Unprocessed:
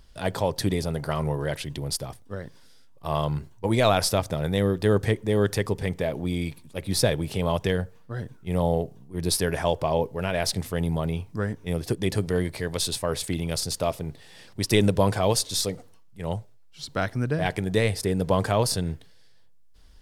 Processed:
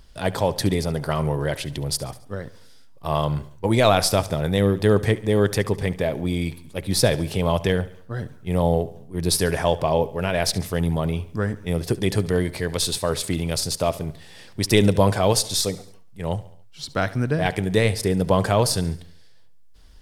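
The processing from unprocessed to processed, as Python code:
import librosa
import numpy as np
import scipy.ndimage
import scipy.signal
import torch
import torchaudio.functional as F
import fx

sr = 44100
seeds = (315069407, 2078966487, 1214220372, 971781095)

y = fx.echo_feedback(x, sr, ms=70, feedback_pct=53, wet_db=-18.5)
y = y * librosa.db_to_amplitude(3.5)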